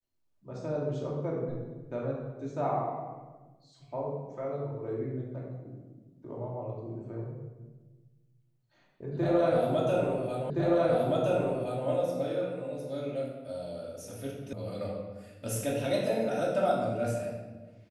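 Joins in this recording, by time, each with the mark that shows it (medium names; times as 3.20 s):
10.50 s: repeat of the last 1.37 s
14.53 s: sound stops dead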